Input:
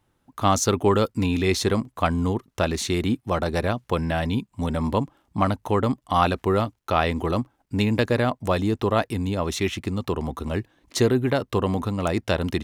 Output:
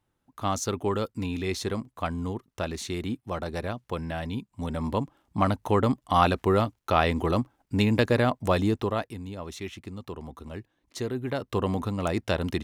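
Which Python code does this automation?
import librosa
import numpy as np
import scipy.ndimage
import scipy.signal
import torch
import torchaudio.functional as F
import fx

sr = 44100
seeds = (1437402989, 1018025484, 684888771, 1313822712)

y = fx.gain(x, sr, db=fx.line((4.3, -8.0), (5.65, -1.0), (8.68, -1.0), (9.19, -12.0), (11.05, -12.0), (11.61, -3.5)))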